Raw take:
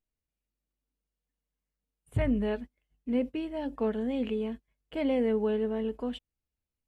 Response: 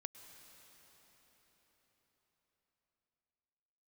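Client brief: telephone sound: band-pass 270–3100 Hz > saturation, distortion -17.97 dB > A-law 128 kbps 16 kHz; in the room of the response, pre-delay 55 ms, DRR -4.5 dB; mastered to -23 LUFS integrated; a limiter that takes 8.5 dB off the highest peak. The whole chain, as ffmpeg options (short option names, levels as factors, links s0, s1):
-filter_complex "[0:a]alimiter=level_in=1.33:limit=0.0631:level=0:latency=1,volume=0.75,asplit=2[s0][s1];[1:a]atrim=start_sample=2205,adelay=55[s2];[s1][s2]afir=irnorm=-1:irlink=0,volume=2.82[s3];[s0][s3]amix=inputs=2:normalize=0,highpass=270,lowpass=3100,asoftclip=threshold=0.0668,volume=3.35" -ar 16000 -c:a pcm_alaw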